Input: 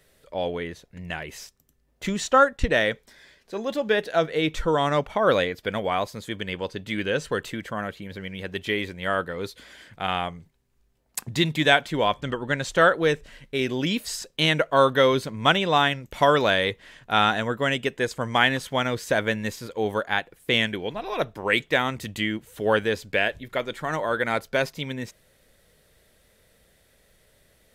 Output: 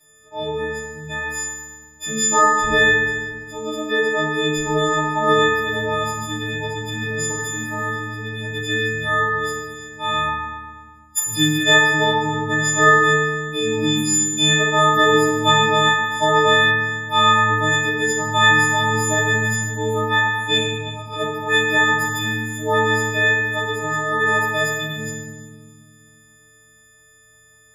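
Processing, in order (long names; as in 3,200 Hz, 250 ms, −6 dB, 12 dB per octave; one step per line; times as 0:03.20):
every partial snapped to a pitch grid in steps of 6 semitones
0:03.54–0:04.33: high-shelf EQ 9,500 Hz −10.5 dB
0:06.88–0:07.41: compressor whose output falls as the input rises −27 dBFS, ratio −1
0:20.57–0:21.13: phaser with its sweep stopped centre 860 Hz, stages 4
feedback delay network reverb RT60 1.6 s, low-frequency decay 1.55×, high-frequency decay 0.75×, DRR −10 dB
level −11 dB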